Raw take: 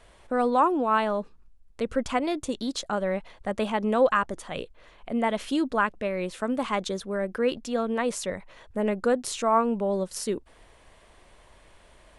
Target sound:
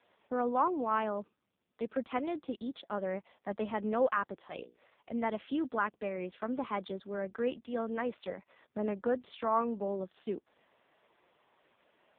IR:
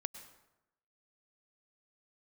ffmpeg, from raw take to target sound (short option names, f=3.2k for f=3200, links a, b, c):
-filter_complex "[0:a]highpass=f=170:w=0.5412,highpass=f=170:w=1.3066,asettb=1/sr,asplit=3[a][b][c];[a]atrim=end=4.374[d];[b]atrim=start=4.37:end=5.09,asetpts=PTS-STARTPTS,afade=t=in:d=0.004:c=qsin,afade=t=out:st=0.716:d=0.004:c=qsin,bandreject=f=60:t=h:w=6,bandreject=f=120:t=h:w=6,bandreject=f=180:t=h:w=6,bandreject=f=240:t=h:w=6,bandreject=f=300:t=h:w=6,bandreject=f=360:t=h:w=6,bandreject=f=420:t=h:w=6,bandreject=f=480:t=h:w=6[e];[c]atrim=start=5.086[f];[d][e]acrossfade=d=0.004:c1=hsin:c2=qsin[g];[g][f]acrossfade=d=0.004:c1=qsin:c2=hsin,volume=-7dB" -ar 8000 -c:a libopencore_amrnb -b:a 5150